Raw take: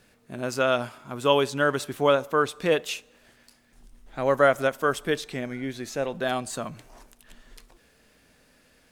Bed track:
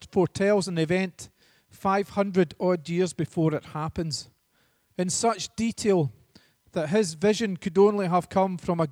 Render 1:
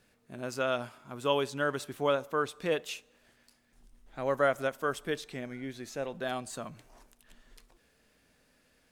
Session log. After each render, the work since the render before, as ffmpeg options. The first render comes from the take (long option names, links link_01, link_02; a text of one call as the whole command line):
ffmpeg -i in.wav -af "volume=-7.5dB" out.wav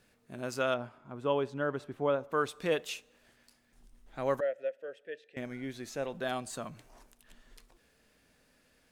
ffmpeg -i in.wav -filter_complex "[0:a]asettb=1/sr,asplit=3[link_01][link_02][link_03];[link_01]atrim=end=0.744[link_04];[link_02]atrim=start=0.74:end=2.32,asetpts=PTS-STARTPTS,afade=type=in:duration=0.004:curve=qsin,afade=type=out:start_time=1.576:duration=0.004:curve=qsin,lowpass=frequency=1000:poles=1[link_05];[link_03]atrim=start=2.316[link_06];[link_04][link_05]acrossfade=duration=0.004:curve1=hsin:curve2=qsin[link_07];[link_07][link_06]acrossfade=duration=0.004:curve1=qsin:curve2=hsin,asettb=1/sr,asplit=3[link_08][link_09][link_10];[link_08]atrim=end=4.404[link_11];[link_09]atrim=start=4.4:end=5.37,asetpts=PTS-STARTPTS,afade=type=in:duration=0.004:curve=qsin,afade=type=out:start_time=0.966:duration=0.004:curve=qsin,asplit=3[link_12][link_13][link_14];[link_12]bandpass=frequency=530:width_type=q:width=8,volume=0dB[link_15];[link_13]bandpass=frequency=1840:width_type=q:width=8,volume=-6dB[link_16];[link_14]bandpass=frequency=2480:width_type=q:width=8,volume=-9dB[link_17];[link_15][link_16][link_17]amix=inputs=3:normalize=0[link_18];[link_10]atrim=start=5.366[link_19];[link_11][link_18]acrossfade=duration=0.004:curve1=hsin:curve2=qsin[link_20];[link_20][link_19]acrossfade=duration=0.004:curve1=qsin:curve2=hsin" out.wav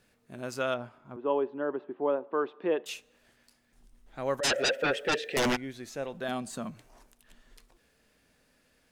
ffmpeg -i in.wav -filter_complex "[0:a]asettb=1/sr,asplit=3[link_01][link_02][link_03];[link_01]atrim=end=1.164[link_04];[link_02]atrim=start=1.16:end=2.86,asetpts=PTS-STARTPTS,afade=type=in:duration=0.004:curve=qsin,afade=type=out:start_time=1.696:duration=0.004:curve=qsin,highpass=frequency=210:width=0.5412,highpass=frequency=210:width=1.3066,equalizer=frequency=360:width_type=q:width=4:gain=8,equalizer=frequency=900:width_type=q:width=4:gain=4,equalizer=frequency=1400:width_type=q:width=4:gain=-5,equalizer=frequency=2200:width_type=q:width=4:gain=-8,lowpass=frequency=2600:width=0.5412,lowpass=frequency=2600:width=1.3066[link_05];[link_03]atrim=start=2.856[link_06];[link_04][link_05]acrossfade=duration=0.004:curve1=hsin:curve2=qsin[link_07];[link_07][link_06]acrossfade=duration=0.004:curve1=qsin:curve2=hsin,asplit=3[link_08][link_09][link_10];[link_08]afade=type=out:start_time=4.43:duration=0.02[link_11];[link_09]aeval=exprs='0.075*sin(PI/2*10*val(0)/0.075)':channel_layout=same,afade=type=in:start_time=4.43:duration=0.02,afade=type=out:start_time=5.55:duration=0.02[link_12];[link_10]afade=type=in:start_time=5.55:duration=0.02[link_13];[link_11][link_12][link_13]amix=inputs=3:normalize=0,asettb=1/sr,asplit=3[link_14][link_15][link_16];[link_14]atrim=end=6.284[link_17];[link_15]atrim=start=6.28:end=6.71,asetpts=PTS-STARTPTS,afade=type=in:duration=0.004:curve=qsin,afade=type=out:start_time=0.426:duration=0.004:curve=qsin,equalizer=frequency=210:width=2.2:gain=10.5[link_18];[link_16]atrim=start=6.706[link_19];[link_17][link_18]acrossfade=duration=0.004:curve1=hsin:curve2=qsin[link_20];[link_20][link_19]acrossfade=duration=0.004:curve1=qsin:curve2=hsin" out.wav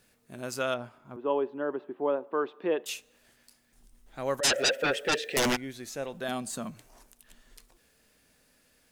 ffmpeg -i in.wav -af "highshelf=frequency=5700:gain=9" out.wav